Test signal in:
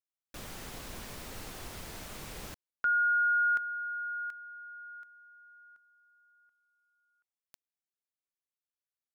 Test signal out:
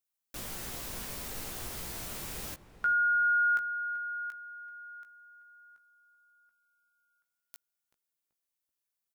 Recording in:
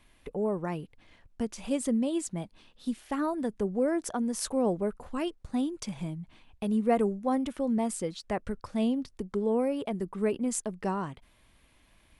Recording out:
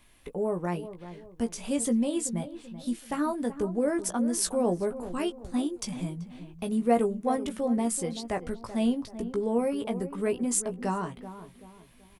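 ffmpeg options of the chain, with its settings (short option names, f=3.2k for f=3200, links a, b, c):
-filter_complex "[0:a]crystalizer=i=1:c=0,asplit=2[a][b];[b]adelay=17,volume=-6.5dB[c];[a][c]amix=inputs=2:normalize=0,asplit=2[d][e];[e]adelay=383,lowpass=f=1.2k:p=1,volume=-12dB,asplit=2[f][g];[g]adelay=383,lowpass=f=1.2k:p=1,volume=0.41,asplit=2[h][i];[i]adelay=383,lowpass=f=1.2k:p=1,volume=0.41,asplit=2[j][k];[k]adelay=383,lowpass=f=1.2k:p=1,volume=0.41[l];[f][h][j][l]amix=inputs=4:normalize=0[m];[d][m]amix=inputs=2:normalize=0"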